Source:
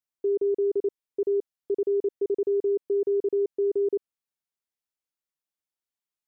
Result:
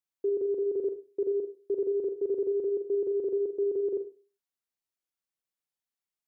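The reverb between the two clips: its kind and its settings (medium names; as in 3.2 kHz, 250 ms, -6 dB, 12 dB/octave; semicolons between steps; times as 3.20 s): Schroeder reverb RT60 0.36 s, combs from 33 ms, DRR 5.5 dB; trim -3 dB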